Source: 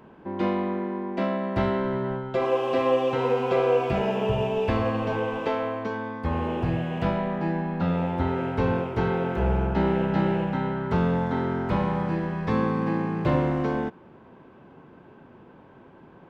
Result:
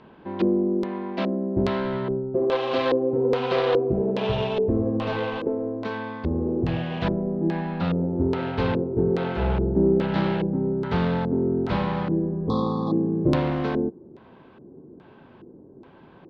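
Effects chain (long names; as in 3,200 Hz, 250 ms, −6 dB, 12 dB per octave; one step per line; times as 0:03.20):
phase distortion by the signal itself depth 0.18 ms
auto-filter low-pass square 1.2 Hz 370–4,100 Hz
healed spectral selection 0:12.39–0:13.11, 1,300–3,300 Hz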